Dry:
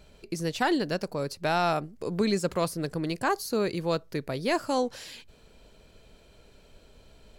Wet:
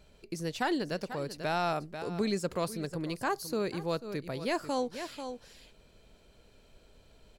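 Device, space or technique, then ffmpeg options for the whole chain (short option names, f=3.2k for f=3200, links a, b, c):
ducked delay: -filter_complex "[0:a]asplit=3[a][b][c];[b]adelay=491,volume=-8.5dB[d];[c]apad=whole_len=347389[e];[d][e]sidechaincompress=threshold=-36dB:ratio=8:attack=12:release=125[f];[a][f]amix=inputs=2:normalize=0,volume=-5dB"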